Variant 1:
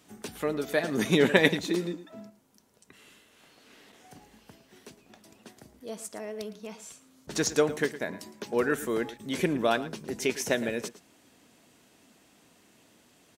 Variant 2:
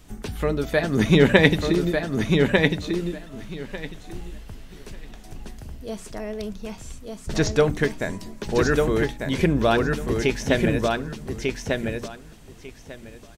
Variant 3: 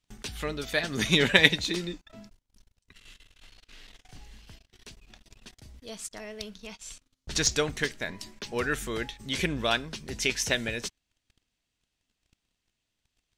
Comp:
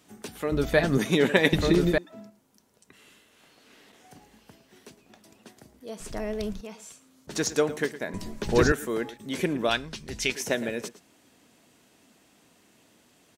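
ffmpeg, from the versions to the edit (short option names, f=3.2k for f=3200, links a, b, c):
-filter_complex "[1:a]asplit=4[a][b][c][d];[0:a]asplit=6[e][f][g][h][i][j];[e]atrim=end=0.522[k];[a]atrim=start=0.518:end=0.982[l];[f]atrim=start=0.978:end=1.532[m];[b]atrim=start=1.528:end=1.982[n];[g]atrim=start=1.978:end=6.002[o];[c]atrim=start=5.998:end=6.612[p];[h]atrim=start=6.608:end=8.142[q];[d]atrim=start=8.138:end=8.722[r];[i]atrim=start=8.718:end=9.692[s];[2:a]atrim=start=9.688:end=10.322[t];[j]atrim=start=10.318[u];[k][l]acrossfade=d=0.004:c1=hsin:c2=hsin[v];[v][m]acrossfade=d=0.004:c1=hsin:c2=hsin[w];[w][n]acrossfade=d=0.004:c1=hsin:c2=hsin[x];[x][o]acrossfade=d=0.004:c1=hsin:c2=hsin[y];[y][p]acrossfade=d=0.004:c1=hsin:c2=hsin[z];[z][q]acrossfade=d=0.004:c1=hsin:c2=hsin[aa];[aa][r]acrossfade=d=0.004:c1=hsin:c2=hsin[ab];[ab][s]acrossfade=d=0.004:c1=hsin:c2=hsin[ac];[ac][t]acrossfade=d=0.004:c1=hsin:c2=hsin[ad];[ad][u]acrossfade=d=0.004:c1=hsin:c2=hsin"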